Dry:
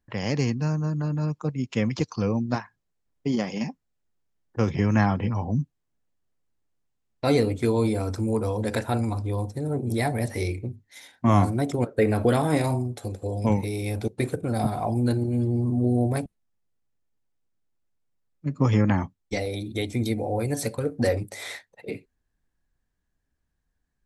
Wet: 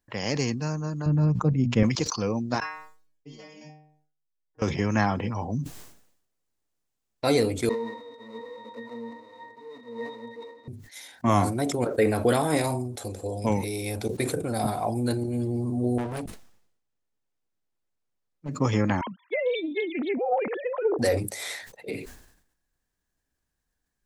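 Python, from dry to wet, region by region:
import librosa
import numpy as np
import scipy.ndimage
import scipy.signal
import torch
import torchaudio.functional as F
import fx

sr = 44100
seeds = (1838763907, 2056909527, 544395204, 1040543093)

y = fx.chain(x, sr, fx.riaa(side='playback'),
    fx.hum_notches(base_hz=60, count=4), at=(1.06, 1.83))
y = fx.chain(y, sr, fx.high_shelf(hz=6600.0, db=-5.5),
    fx.stiff_resonator(f0_hz=150.0, decay_s=0.53, stiffness=0.002), at=(2.6, 4.62))
y = fx.chain(y, sr, fx.halfwave_hold(),
    fx.highpass(hz=290.0, slope=24),
    fx.octave_resonator(note='A#', decay_s=0.25), at=(7.69, 10.68))
y = fx.chain(y, sr, fx.overload_stage(gain_db=27.5),
    fx.high_shelf(hz=6900.0, db=-10.5),
    fx.sustainer(db_per_s=110.0), at=(15.98, 18.49))
y = fx.chain(y, sr, fx.sine_speech(),
    fx.doppler_dist(depth_ms=0.14), at=(19.01, 20.99))
y = fx.bass_treble(y, sr, bass_db=-6, treble_db=5)
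y = fx.sustainer(y, sr, db_per_s=74.0)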